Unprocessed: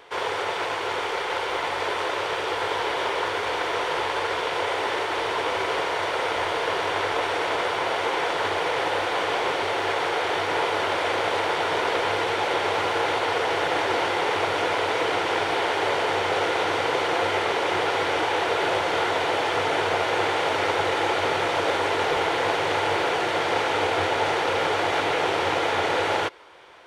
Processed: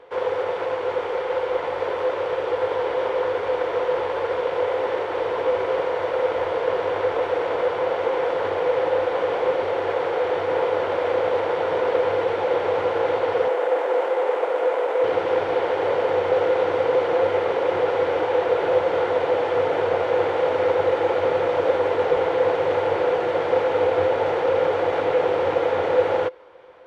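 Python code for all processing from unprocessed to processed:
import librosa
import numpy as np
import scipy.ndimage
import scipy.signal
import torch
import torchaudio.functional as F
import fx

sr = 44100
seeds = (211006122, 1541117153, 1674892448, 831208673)

y = fx.chain(x, sr, fx.median_filter(points=9),
    fx.cheby1_highpass(hz=470.0, order=2), at=(13.48, 15.04))
y = fx.lowpass(y, sr, hz=1100.0, slope=6)
y = fx.peak_eq(y, sr, hz=510.0, db=14.0, octaves=0.2)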